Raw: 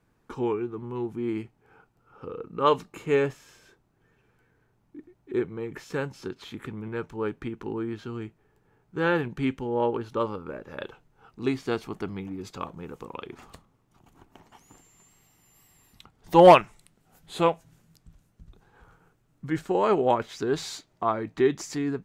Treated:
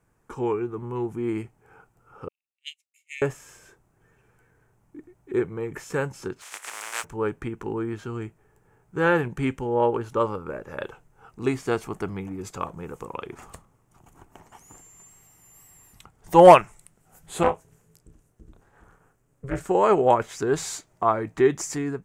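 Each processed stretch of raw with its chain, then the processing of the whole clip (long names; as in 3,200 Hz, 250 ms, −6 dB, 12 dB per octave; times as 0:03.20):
0:02.28–0:03.22: Butterworth high-pass 2,000 Hz 96 dB per octave + expander for the loud parts 2.5 to 1, over −54 dBFS
0:06.41–0:07.03: compressing power law on the bin magnitudes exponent 0.23 + high-pass filter 820 Hz + high-frequency loss of the air 54 metres
0:17.43–0:19.61: amplitude modulation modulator 270 Hz, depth 90% + double-tracking delay 32 ms −11.5 dB + highs frequency-modulated by the lows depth 0.3 ms
whole clip: graphic EQ with 10 bands 250 Hz −5 dB, 4,000 Hz −10 dB, 8,000 Hz +7 dB; automatic gain control gain up to 3.5 dB; level +1.5 dB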